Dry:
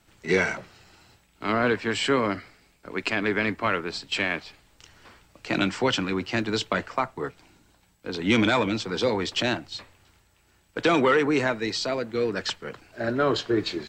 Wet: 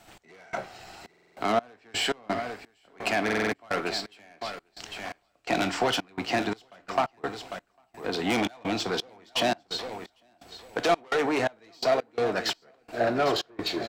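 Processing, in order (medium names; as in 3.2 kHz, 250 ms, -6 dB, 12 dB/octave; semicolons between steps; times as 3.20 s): saturation -23.5 dBFS, distortion -9 dB; bass shelf 180 Hz -7.5 dB; on a send at -12.5 dB: reverberation RT60 0.35 s, pre-delay 24 ms; on the sum: compression 1.5:1, threshold -48 dBFS, peak gain reduction 8.5 dB; peaking EQ 720 Hz +12.5 dB 0.33 oct; feedback delay 800 ms, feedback 24%, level -11 dB; trance gate "x..xxx.xx..x.x" 85 bpm -24 dB; in parallel at -7 dB: crossover distortion -45.5 dBFS; on the sum: buffer glitch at 1.09/3.24 s, samples 2048, times 5; trim +7 dB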